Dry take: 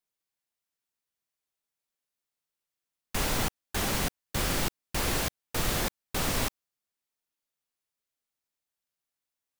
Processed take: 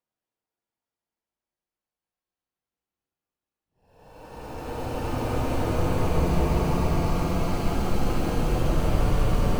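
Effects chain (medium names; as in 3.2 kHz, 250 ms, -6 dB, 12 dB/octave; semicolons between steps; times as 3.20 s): median filter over 25 samples; Paulstretch 29×, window 0.10 s, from 5.37 s; trim +7.5 dB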